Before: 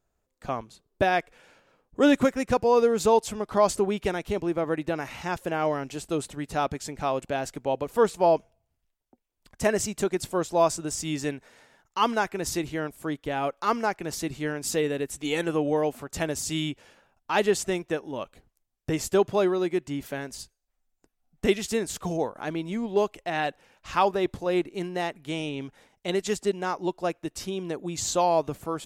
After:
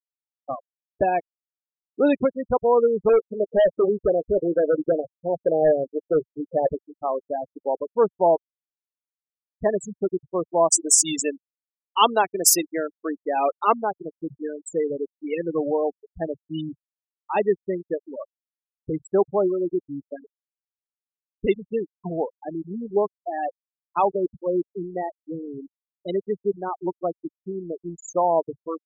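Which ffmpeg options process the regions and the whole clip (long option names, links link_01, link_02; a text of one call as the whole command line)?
ffmpeg -i in.wav -filter_complex "[0:a]asettb=1/sr,asplit=3[link_01][link_02][link_03];[link_01]atrim=end=3.094[link_04];[link_02]atrim=start=3.09:end=6.79,asetpts=PTS-STARTPTS,afade=type=in:duration=0.004:curve=qsin,afade=type=out:start_time=3.696:duration=0.004:curve=qsin,lowpass=frequency=540:width_type=q:width=4.7,asoftclip=type=hard:threshold=-17.5dB,asplit=2[link_05][link_06];[link_06]adelay=13,volume=-12dB[link_07];[link_05][link_07]amix=inputs=2:normalize=0,atrim=end_sample=163170[link_08];[link_03]atrim=start=6.786[link_09];[link_04][link_08]acrossfade=duration=0.004:curve1=hsin:curve2=qsin[link_10];[link_10][link_09]acrossfade=duration=0.004:curve1=qsin:curve2=hsin,asettb=1/sr,asplit=3[link_11][link_12][link_13];[link_11]atrim=end=10.724[link_14];[link_12]atrim=start=10.72:end=13.73,asetpts=PTS-STARTPTS,afade=type=in:duration=0.004:curve=qsin,afade=type=out:start_time=3.006:duration=0.004:curve=qsin,aemphasis=mode=production:type=bsi,acontrast=39[link_15];[link_13]atrim=start=13.726[link_16];[link_14][link_15]acrossfade=duration=0.004:curve1=hsin:curve2=qsin[link_17];[link_17][link_16]acrossfade=duration=0.004:curve1=qsin:curve2=hsin,bandreject=frequency=50:width_type=h:width=6,bandreject=frequency=100:width_type=h:width=6,bandreject=frequency=150:width_type=h:width=6,afftfilt=real='re*gte(hypot(re,im),0.126)':imag='im*gte(hypot(re,im),0.126)':win_size=1024:overlap=0.75,equalizer=frequency=100:width_type=o:width=0.67:gain=-11,equalizer=frequency=250:width_type=o:width=0.67:gain=-5,equalizer=frequency=1600:width_type=o:width=0.67:gain=-9,volume=3.5dB" out.wav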